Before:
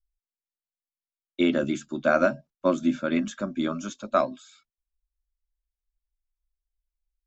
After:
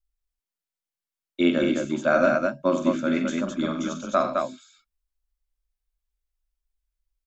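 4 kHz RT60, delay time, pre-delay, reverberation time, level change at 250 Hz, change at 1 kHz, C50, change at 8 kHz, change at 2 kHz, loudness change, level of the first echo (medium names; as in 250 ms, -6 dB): no reverb, 46 ms, no reverb, no reverb, +2.0 dB, +2.5 dB, no reverb, no reading, +2.5 dB, +2.0 dB, -7.0 dB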